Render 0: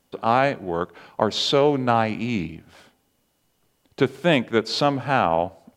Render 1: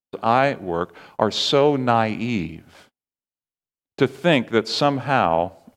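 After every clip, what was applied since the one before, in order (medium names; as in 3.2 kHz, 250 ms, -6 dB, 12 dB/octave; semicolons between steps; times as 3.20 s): gate -50 dBFS, range -36 dB; trim +1.5 dB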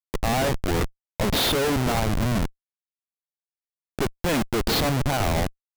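Schmitt trigger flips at -24.5 dBFS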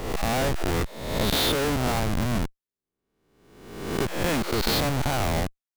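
reverse spectral sustain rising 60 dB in 0.99 s; trim -4 dB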